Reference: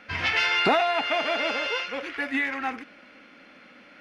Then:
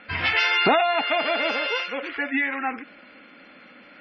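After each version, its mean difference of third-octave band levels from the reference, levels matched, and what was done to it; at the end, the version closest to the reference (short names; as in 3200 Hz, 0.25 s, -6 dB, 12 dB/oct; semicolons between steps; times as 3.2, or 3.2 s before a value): 3.5 dB: spectral gate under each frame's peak -25 dB strong; gain +2.5 dB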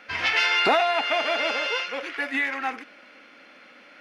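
2.0 dB: tone controls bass -11 dB, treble +2 dB; gain +1.5 dB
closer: second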